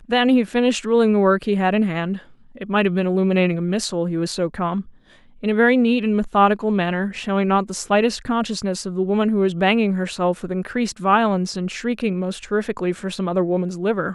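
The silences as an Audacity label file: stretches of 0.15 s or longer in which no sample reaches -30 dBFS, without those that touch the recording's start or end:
2.180000	2.580000	silence
4.820000	5.430000	silence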